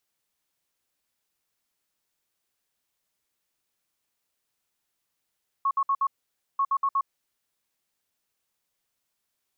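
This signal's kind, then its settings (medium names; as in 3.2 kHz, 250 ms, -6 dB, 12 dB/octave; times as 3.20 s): beep pattern sine 1.1 kHz, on 0.06 s, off 0.06 s, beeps 4, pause 0.52 s, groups 2, -20.5 dBFS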